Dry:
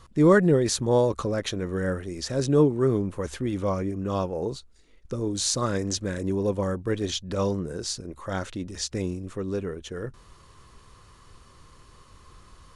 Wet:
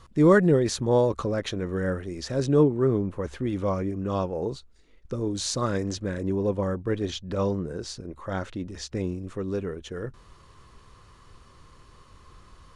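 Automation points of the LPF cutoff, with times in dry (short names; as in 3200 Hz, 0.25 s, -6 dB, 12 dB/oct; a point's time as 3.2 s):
LPF 6 dB/oct
8200 Hz
from 0.59 s 4300 Hz
from 2.63 s 2100 Hz
from 3.39 s 4400 Hz
from 5.91 s 2600 Hz
from 9.18 s 5400 Hz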